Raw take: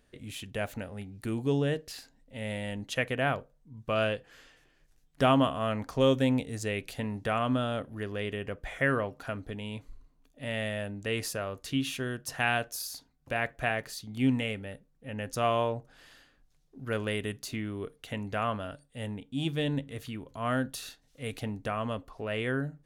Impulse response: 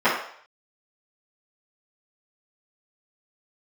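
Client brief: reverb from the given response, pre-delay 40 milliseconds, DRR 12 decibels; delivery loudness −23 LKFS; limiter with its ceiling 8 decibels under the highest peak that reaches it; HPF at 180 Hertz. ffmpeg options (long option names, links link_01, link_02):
-filter_complex "[0:a]highpass=180,alimiter=limit=-17dB:level=0:latency=1,asplit=2[link_01][link_02];[1:a]atrim=start_sample=2205,adelay=40[link_03];[link_02][link_03]afir=irnorm=-1:irlink=0,volume=-32.5dB[link_04];[link_01][link_04]amix=inputs=2:normalize=0,volume=10.5dB"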